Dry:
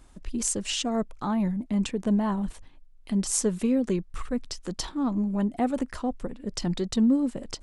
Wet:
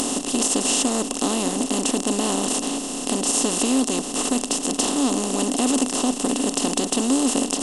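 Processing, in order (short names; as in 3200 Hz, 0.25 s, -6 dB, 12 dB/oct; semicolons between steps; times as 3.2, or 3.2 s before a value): per-bin compression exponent 0.2; tone controls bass -13 dB, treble +7 dB; upward compressor, threshold -22 dBFS; small resonant body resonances 270/2700 Hz, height 10 dB; maximiser +3 dB; gain -7 dB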